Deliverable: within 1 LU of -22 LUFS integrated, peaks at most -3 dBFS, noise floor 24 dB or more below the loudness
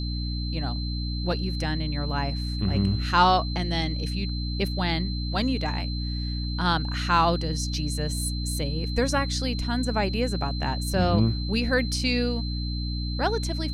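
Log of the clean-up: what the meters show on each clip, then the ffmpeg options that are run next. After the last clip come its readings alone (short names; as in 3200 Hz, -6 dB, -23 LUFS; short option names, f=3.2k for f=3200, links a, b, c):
hum 60 Hz; harmonics up to 300 Hz; hum level -27 dBFS; steady tone 4100 Hz; tone level -36 dBFS; loudness -26.5 LUFS; peak -6.0 dBFS; loudness target -22.0 LUFS
-> -af "bandreject=f=60:t=h:w=6,bandreject=f=120:t=h:w=6,bandreject=f=180:t=h:w=6,bandreject=f=240:t=h:w=6,bandreject=f=300:t=h:w=6"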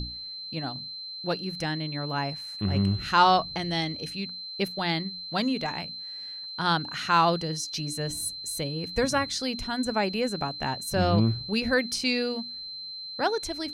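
hum none; steady tone 4100 Hz; tone level -36 dBFS
-> -af "bandreject=f=4.1k:w=30"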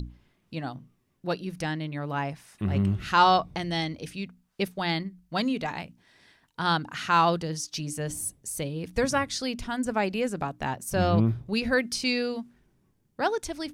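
steady tone none; loudness -28.0 LUFS; peak -8.0 dBFS; loudness target -22.0 LUFS
-> -af "volume=6dB,alimiter=limit=-3dB:level=0:latency=1"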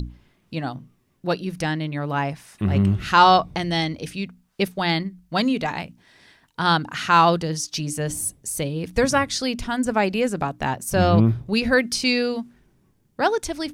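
loudness -22.0 LUFS; peak -3.0 dBFS; noise floor -64 dBFS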